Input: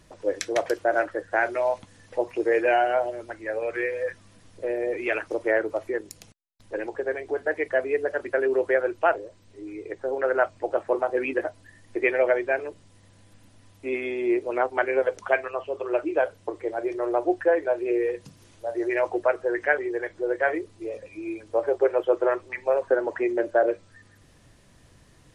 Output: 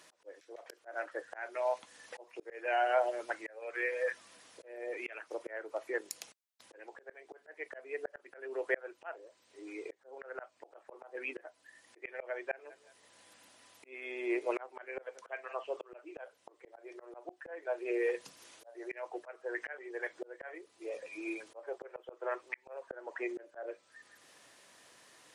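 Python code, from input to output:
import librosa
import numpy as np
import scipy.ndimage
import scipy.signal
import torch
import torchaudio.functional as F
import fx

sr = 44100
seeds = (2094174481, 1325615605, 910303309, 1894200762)

y = fx.echo_feedback(x, sr, ms=182, feedback_pct=24, wet_db=-21.5, at=(12.69, 15.52), fade=0.02)
y = scipy.signal.sosfilt(scipy.signal.bessel(2, 680.0, 'highpass', norm='mag', fs=sr, output='sos'), y)
y = fx.auto_swell(y, sr, attack_ms=741.0)
y = y * librosa.db_to_amplitude(2.0)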